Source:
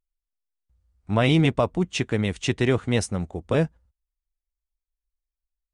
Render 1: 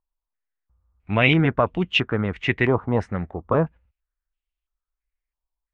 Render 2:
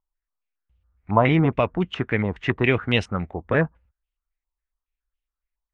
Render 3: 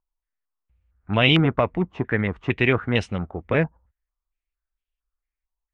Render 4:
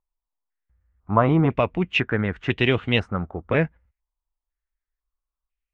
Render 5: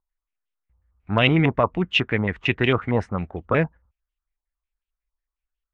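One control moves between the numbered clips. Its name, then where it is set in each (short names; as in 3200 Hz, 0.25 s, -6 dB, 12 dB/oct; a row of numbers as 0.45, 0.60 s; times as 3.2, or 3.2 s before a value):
stepped low-pass, rate: 3, 7.2, 4.4, 2, 11 Hz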